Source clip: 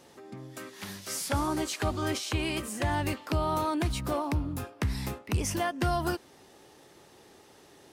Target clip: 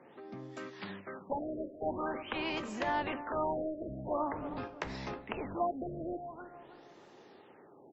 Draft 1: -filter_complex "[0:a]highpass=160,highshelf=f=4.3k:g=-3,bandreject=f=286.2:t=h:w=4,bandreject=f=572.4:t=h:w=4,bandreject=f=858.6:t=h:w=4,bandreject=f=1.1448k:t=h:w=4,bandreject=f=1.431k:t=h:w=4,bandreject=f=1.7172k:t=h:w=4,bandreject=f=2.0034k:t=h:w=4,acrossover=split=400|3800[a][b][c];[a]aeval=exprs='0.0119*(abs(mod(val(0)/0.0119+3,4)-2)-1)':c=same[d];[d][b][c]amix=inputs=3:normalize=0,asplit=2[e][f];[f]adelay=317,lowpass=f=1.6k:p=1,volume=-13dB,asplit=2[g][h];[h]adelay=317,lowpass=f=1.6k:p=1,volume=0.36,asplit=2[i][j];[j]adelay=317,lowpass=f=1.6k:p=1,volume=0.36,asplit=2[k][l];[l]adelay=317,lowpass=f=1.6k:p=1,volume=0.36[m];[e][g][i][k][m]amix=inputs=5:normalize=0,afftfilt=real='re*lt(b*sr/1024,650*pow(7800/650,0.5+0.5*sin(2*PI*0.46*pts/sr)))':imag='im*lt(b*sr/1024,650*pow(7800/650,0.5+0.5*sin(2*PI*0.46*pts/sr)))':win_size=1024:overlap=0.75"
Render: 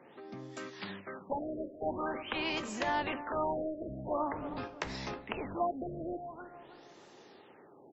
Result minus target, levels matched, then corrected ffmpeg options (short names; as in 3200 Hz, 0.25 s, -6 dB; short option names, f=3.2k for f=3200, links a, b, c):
8000 Hz band +6.5 dB
-filter_complex "[0:a]highpass=160,highshelf=f=4.3k:g=-13,bandreject=f=286.2:t=h:w=4,bandreject=f=572.4:t=h:w=4,bandreject=f=858.6:t=h:w=4,bandreject=f=1.1448k:t=h:w=4,bandreject=f=1.431k:t=h:w=4,bandreject=f=1.7172k:t=h:w=4,bandreject=f=2.0034k:t=h:w=4,acrossover=split=400|3800[a][b][c];[a]aeval=exprs='0.0119*(abs(mod(val(0)/0.0119+3,4)-2)-1)':c=same[d];[d][b][c]amix=inputs=3:normalize=0,asplit=2[e][f];[f]adelay=317,lowpass=f=1.6k:p=1,volume=-13dB,asplit=2[g][h];[h]adelay=317,lowpass=f=1.6k:p=1,volume=0.36,asplit=2[i][j];[j]adelay=317,lowpass=f=1.6k:p=1,volume=0.36,asplit=2[k][l];[l]adelay=317,lowpass=f=1.6k:p=1,volume=0.36[m];[e][g][i][k][m]amix=inputs=5:normalize=0,afftfilt=real='re*lt(b*sr/1024,650*pow(7800/650,0.5+0.5*sin(2*PI*0.46*pts/sr)))':imag='im*lt(b*sr/1024,650*pow(7800/650,0.5+0.5*sin(2*PI*0.46*pts/sr)))':win_size=1024:overlap=0.75"